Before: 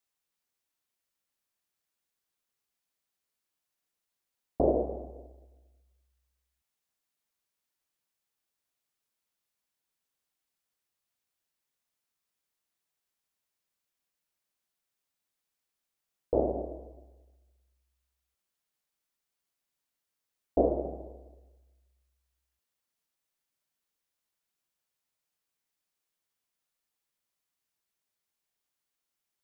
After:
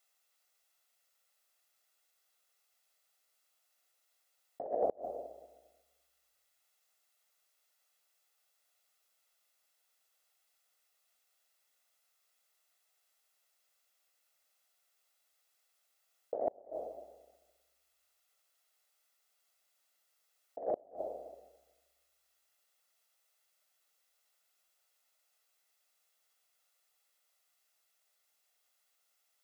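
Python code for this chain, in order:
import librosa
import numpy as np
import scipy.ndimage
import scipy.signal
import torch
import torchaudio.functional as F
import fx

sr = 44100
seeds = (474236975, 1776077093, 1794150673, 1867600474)

y = scipy.signal.sosfilt(scipy.signal.butter(2, 440.0, 'highpass', fs=sr, output='sos'), x)
y = y + 0.5 * np.pad(y, (int(1.5 * sr / 1000.0), 0))[:len(y)]
y = fx.over_compress(y, sr, threshold_db=-33.0, ratio=-0.5)
y = fx.gate_flip(y, sr, shuts_db=-23.0, range_db=-31)
y = y + 10.0 ** (-23.0 / 20.0) * np.pad(y, (int(251 * sr / 1000.0), 0))[:len(y)]
y = F.gain(torch.from_numpy(y), 3.0).numpy()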